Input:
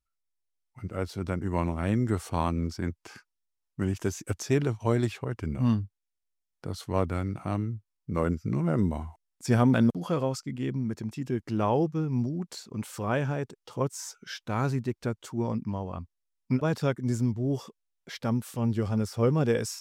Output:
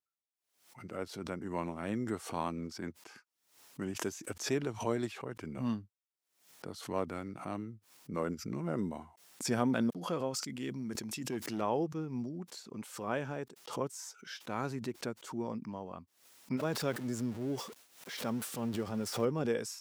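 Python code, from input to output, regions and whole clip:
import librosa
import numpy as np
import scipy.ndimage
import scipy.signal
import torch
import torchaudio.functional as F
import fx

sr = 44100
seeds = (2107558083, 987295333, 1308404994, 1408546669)

y = fx.chain(x, sr, fx.high_shelf(hz=2600.0, db=9.0),
    fx.overload_stage(gain_db=23.0),
    fx.sustainer(db_per_s=32.0), at=(10.34, 11.61))
y = fx.chain(y, sr, fx.zero_step(step_db=-38.5),
    fx.highpass(hz=45.0, slope=12),
    fx.sustainer(db_per_s=120.0), at=(16.57, 19.25))
y = scipy.signal.sosfilt(scipy.signal.butter(2, 200.0, 'highpass', fs=sr, output='sos'), y)
y = fx.pre_swell(y, sr, db_per_s=110.0)
y = y * librosa.db_to_amplitude(-6.5)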